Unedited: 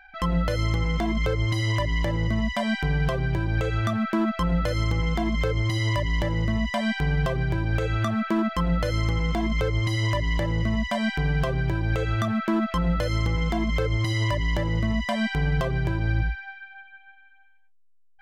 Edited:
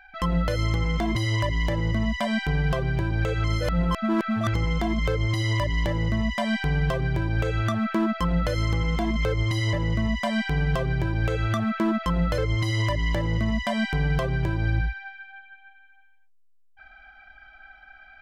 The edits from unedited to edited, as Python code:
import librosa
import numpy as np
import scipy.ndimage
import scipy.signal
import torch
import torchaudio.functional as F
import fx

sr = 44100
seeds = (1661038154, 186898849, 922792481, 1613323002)

y = fx.edit(x, sr, fx.cut(start_s=1.15, length_s=0.36),
    fx.reverse_span(start_s=3.8, length_s=1.1),
    fx.cut(start_s=10.09, length_s=0.32),
    fx.cut(start_s=13.06, length_s=0.74), tone=tone)